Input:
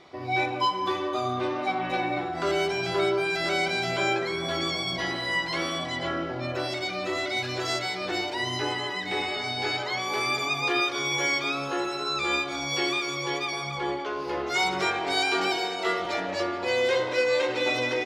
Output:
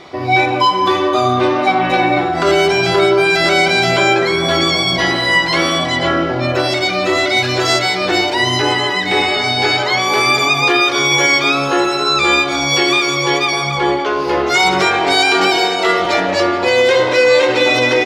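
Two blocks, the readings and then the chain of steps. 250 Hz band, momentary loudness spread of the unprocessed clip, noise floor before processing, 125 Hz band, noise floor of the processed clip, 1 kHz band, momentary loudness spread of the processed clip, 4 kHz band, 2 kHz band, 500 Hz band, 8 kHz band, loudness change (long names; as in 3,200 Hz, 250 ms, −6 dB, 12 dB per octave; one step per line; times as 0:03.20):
+14.0 dB, 5 LU, −33 dBFS, +14.5 dB, −19 dBFS, +14.0 dB, 4 LU, +14.0 dB, +14.0 dB, +13.5 dB, +14.0 dB, +14.0 dB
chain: boost into a limiter +17 dB
level −2.5 dB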